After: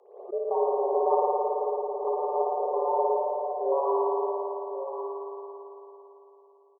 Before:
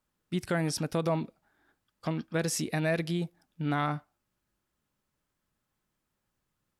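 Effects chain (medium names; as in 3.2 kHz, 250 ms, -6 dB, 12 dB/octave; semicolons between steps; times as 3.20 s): local Wiener filter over 41 samples; FFT band-pass 110–950 Hz; frequency shift +250 Hz; on a send: delay 1099 ms -8.5 dB; on the sum: spring tank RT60 3.6 s, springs 55 ms, chirp 60 ms, DRR -5 dB; swell ahead of each attack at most 97 dB/s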